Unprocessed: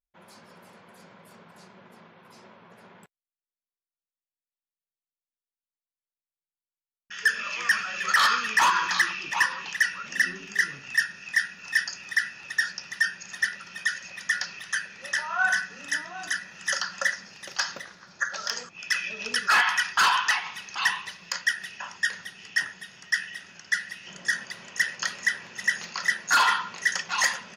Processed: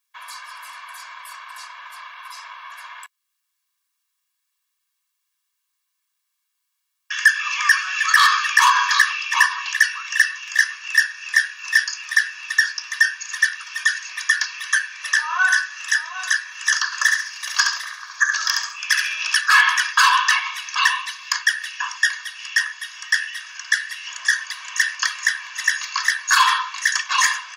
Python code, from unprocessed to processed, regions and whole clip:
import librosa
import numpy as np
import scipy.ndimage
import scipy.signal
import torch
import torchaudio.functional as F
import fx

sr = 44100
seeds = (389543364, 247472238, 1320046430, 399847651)

y = fx.chain(x, sr, fx.high_shelf(hz=10000.0, db=6.5),
    fx.echo_feedback(ms=68, feedback_pct=29, wet_db=-4.5), at=(16.85, 19.41))
y = scipy.signal.sosfilt(scipy.signal.butter(8, 890.0, 'highpass', fs=sr, output='sos'), y)
y = y + 0.81 * np.pad(y, (int(1.8 * sr / 1000.0), 0))[:len(y)]
y = fx.band_squash(y, sr, depth_pct=40)
y = y * 10.0 ** (6.0 / 20.0)